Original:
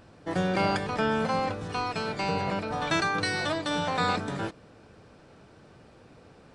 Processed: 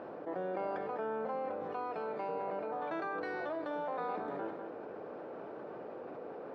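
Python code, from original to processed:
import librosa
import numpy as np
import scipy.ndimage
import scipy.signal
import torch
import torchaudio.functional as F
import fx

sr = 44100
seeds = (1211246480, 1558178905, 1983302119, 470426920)

y = fx.ladder_bandpass(x, sr, hz=590.0, resonance_pct=20)
y = fx.echo_multitap(y, sr, ms=(49, 68, 199), db=(-16.5, -17.0, -17.5))
y = fx.env_flatten(y, sr, amount_pct=70)
y = y * librosa.db_to_amplitude(1.0)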